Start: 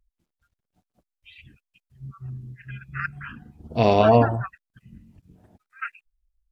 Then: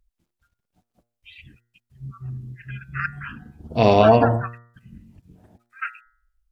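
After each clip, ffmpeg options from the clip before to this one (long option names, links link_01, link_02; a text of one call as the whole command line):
ffmpeg -i in.wav -af "bandreject=frequency=118.2:width_type=h:width=4,bandreject=frequency=236.4:width_type=h:width=4,bandreject=frequency=354.6:width_type=h:width=4,bandreject=frequency=472.8:width_type=h:width=4,bandreject=frequency=591:width_type=h:width=4,bandreject=frequency=709.2:width_type=h:width=4,bandreject=frequency=827.4:width_type=h:width=4,bandreject=frequency=945.6:width_type=h:width=4,bandreject=frequency=1063.8:width_type=h:width=4,bandreject=frequency=1182:width_type=h:width=4,bandreject=frequency=1300.2:width_type=h:width=4,bandreject=frequency=1418.4:width_type=h:width=4,bandreject=frequency=1536.6:width_type=h:width=4,bandreject=frequency=1654.8:width_type=h:width=4,bandreject=frequency=1773:width_type=h:width=4,bandreject=frequency=1891.2:width_type=h:width=4,bandreject=frequency=2009.4:width_type=h:width=4,volume=3dB" out.wav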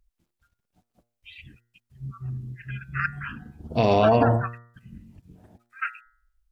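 ffmpeg -i in.wav -af "alimiter=limit=-8.5dB:level=0:latency=1:release=46" out.wav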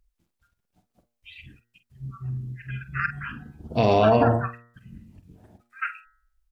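ffmpeg -i in.wav -filter_complex "[0:a]asplit=2[link_01][link_02];[link_02]adelay=47,volume=-11.5dB[link_03];[link_01][link_03]amix=inputs=2:normalize=0" out.wav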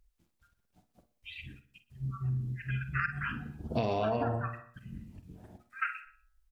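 ffmpeg -i in.wav -af "aecho=1:1:61|122|183|244:0.133|0.0693|0.0361|0.0188,acompressor=threshold=-28dB:ratio=6" out.wav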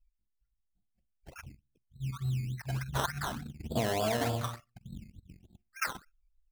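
ffmpeg -i in.wav -af "asuperstop=centerf=3900:order=4:qfactor=4.4,anlmdn=0.1,acrusher=samples=15:mix=1:aa=0.000001:lfo=1:lforange=9:lforate=3.4" out.wav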